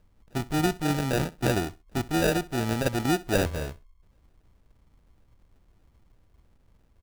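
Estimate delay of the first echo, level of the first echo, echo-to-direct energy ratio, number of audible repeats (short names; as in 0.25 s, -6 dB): 65 ms, -20.0 dB, -20.0 dB, 2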